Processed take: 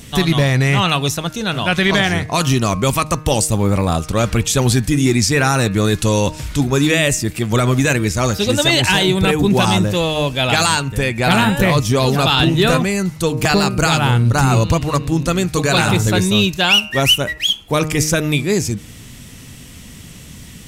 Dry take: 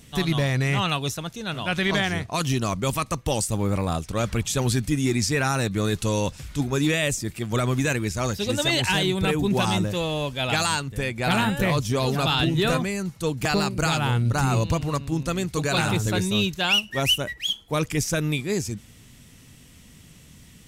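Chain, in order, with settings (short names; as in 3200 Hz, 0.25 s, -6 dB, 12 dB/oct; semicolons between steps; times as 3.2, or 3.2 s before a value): de-hum 154.4 Hz, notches 18; in parallel at 0 dB: compressor, threshold -32 dBFS, peak gain reduction 14.5 dB; on the sum: gain +6.5 dB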